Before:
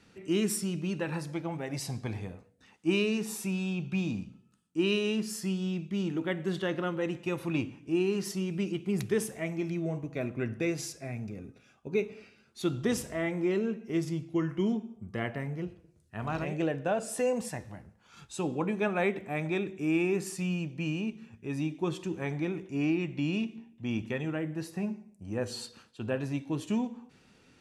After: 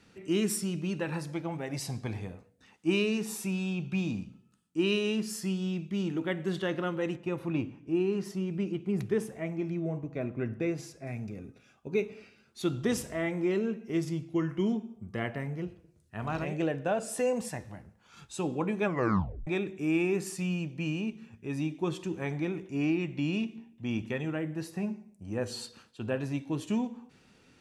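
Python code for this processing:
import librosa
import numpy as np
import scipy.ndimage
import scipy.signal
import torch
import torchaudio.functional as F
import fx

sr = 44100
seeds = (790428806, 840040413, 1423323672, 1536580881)

y = fx.high_shelf(x, sr, hz=2500.0, db=-11.0, at=(7.16, 11.07))
y = fx.edit(y, sr, fx.tape_stop(start_s=18.84, length_s=0.63), tone=tone)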